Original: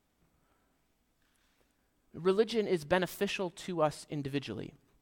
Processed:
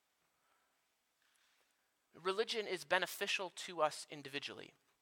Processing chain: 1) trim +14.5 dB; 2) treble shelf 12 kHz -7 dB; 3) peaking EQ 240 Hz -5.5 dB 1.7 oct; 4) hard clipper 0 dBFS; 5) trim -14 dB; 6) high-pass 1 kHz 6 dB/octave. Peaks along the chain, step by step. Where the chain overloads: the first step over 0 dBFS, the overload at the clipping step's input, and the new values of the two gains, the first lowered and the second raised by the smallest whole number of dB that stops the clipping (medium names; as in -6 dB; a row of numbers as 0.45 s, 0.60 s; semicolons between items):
-0.5 dBFS, -0.5 dBFS, -2.0 dBFS, -2.0 dBFS, -16.0 dBFS, -17.0 dBFS; nothing clips